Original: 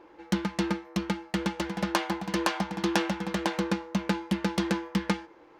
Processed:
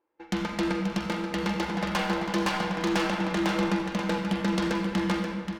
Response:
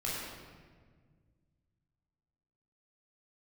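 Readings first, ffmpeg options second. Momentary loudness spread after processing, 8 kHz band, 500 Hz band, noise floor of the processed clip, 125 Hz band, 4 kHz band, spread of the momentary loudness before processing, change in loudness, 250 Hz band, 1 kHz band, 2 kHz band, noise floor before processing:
3 LU, -1.0 dB, +2.5 dB, -48 dBFS, +1.5 dB, +1.5 dB, 4 LU, +2.0 dB, +2.0 dB, +2.0 dB, +2.5 dB, -55 dBFS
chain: -filter_complex "[0:a]lowshelf=f=160:g=-7,asplit=2[a][b];[b]adynamicsmooth=sensitivity=7:basefreq=6.4k,volume=-1dB[c];[a][c]amix=inputs=2:normalize=0,agate=range=-29dB:threshold=-42dB:ratio=16:detection=peak,asoftclip=type=tanh:threshold=-20dB,aecho=1:1:532:0.398,asplit=2[d][e];[1:a]atrim=start_sample=2205,adelay=44[f];[e][f]afir=irnorm=-1:irlink=0,volume=-8dB[g];[d][g]amix=inputs=2:normalize=0,volume=-1.5dB"

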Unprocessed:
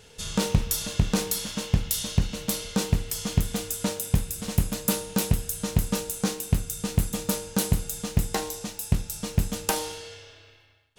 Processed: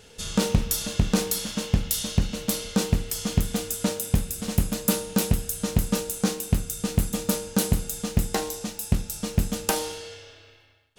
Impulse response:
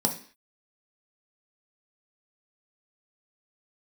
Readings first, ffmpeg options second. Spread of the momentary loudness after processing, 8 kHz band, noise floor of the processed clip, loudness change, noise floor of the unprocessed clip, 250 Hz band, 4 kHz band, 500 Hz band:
4 LU, +1.0 dB, -52 dBFS, +1.0 dB, -53 dBFS, +2.5 dB, +1.0 dB, +2.5 dB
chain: -filter_complex "[0:a]asplit=2[a][b];[b]lowpass=2k[c];[1:a]atrim=start_sample=2205[d];[c][d]afir=irnorm=-1:irlink=0,volume=-25dB[e];[a][e]amix=inputs=2:normalize=0,volume=1dB"

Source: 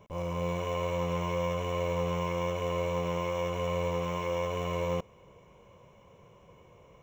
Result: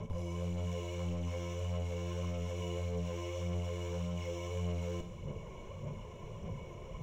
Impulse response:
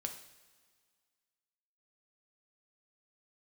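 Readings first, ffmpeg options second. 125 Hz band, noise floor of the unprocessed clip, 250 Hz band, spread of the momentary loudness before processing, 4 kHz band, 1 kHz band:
-1.0 dB, -58 dBFS, -4.5 dB, 2 LU, -7.0 dB, -14.5 dB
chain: -filter_complex "[0:a]lowshelf=f=100:g=8,aphaser=in_gain=1:out_gain=1:delay=3.1:decay=0.5:speed=1.7:type=sinusoidal,acrossover=split=320|3000[a][b][c];[b]acompressor=threshold=-59dB:ratio=1.5[d];[a][d][c]amix=inputs=3:normalize=0,equalizer=f=1.3k:w=0.83:g=-4,aeval=exprs='clip(val(0),-1,0.0473)':c=same,lowpass=12k,alimiter=level_in=14.5dB:limit=-24dB:level=0:latency=1,volume=-14.5dB[e];[1:a]atrim=start_sample=2205[f];[e][f]afir=irnorm=-1:irlink=0,volume=9.5dB"

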